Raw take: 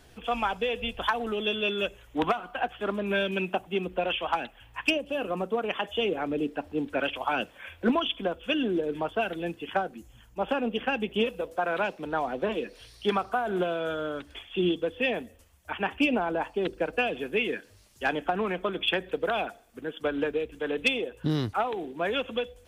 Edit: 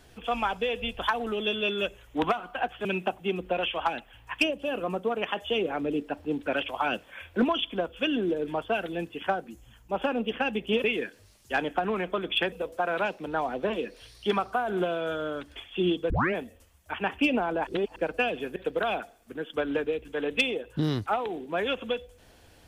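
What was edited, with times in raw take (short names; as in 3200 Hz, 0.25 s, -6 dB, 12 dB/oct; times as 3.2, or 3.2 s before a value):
2.85–3.32 cut
14.89 tape start 0.25 s
16.46–16.75 reverse
17.35–19.03 move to 11.31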